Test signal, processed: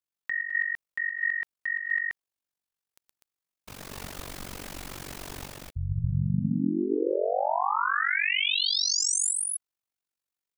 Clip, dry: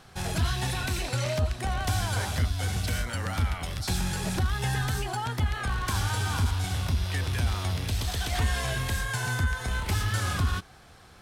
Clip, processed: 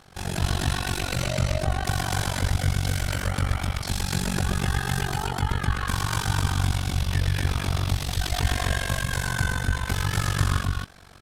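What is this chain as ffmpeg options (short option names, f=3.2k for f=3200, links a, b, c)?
-af "aecho=1:1:119.5|247.8:0.631|0.891,tremolo=f=47:d=0.947,volume=3.5dB"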